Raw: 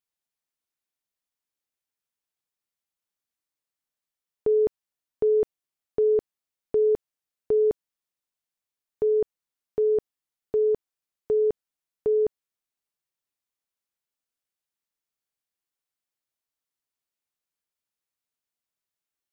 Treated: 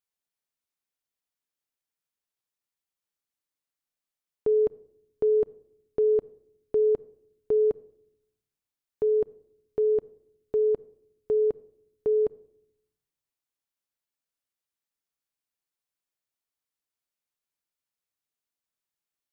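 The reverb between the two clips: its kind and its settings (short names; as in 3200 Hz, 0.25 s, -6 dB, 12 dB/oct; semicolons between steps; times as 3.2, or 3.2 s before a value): shoebox room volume 2000 m³, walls furnished, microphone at 0.3 m; gain -2 dB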